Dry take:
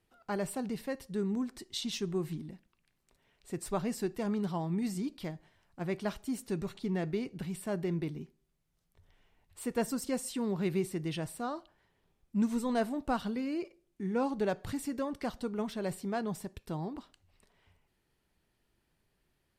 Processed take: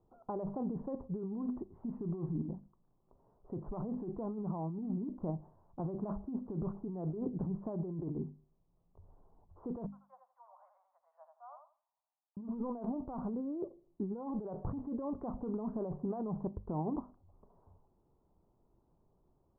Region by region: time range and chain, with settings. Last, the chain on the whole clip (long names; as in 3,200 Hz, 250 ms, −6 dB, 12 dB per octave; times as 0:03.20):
0:09.86–0:12.37: Butterworth high-pass 580 Hz 96 dB per octave + first difference + repeating echo 84 ms, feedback 20%, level −6 dB
whole clip: Butterworth low-pass 1,100 Hz 48 dB per octave; mains-hum notches 50/100/150/200/250 Hz; compressor whose output falls as the input rises −39 dBFS, ratio −1; level +1.5 dB